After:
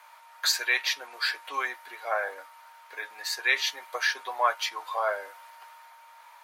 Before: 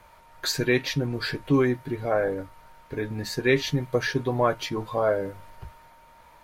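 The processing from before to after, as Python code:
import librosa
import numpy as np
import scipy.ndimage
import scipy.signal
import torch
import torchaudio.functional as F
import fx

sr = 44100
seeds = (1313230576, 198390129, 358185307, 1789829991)

y = scipy.signal.sosfilt(scipy.signal.butter(4, 800.0, 'highpass', fs=sr, output='sos'), x)
y = y * librosa.db_to_amplitude(3.0)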